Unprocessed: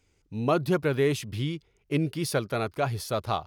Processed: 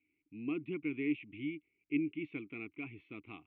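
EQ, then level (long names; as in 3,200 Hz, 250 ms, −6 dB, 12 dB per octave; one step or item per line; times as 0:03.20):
formant filter u
transistor ladder low-pass 3,100 Hz, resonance 55%
phaser with its sweep stopped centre 2,100 Hz, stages 4
+10.5 dB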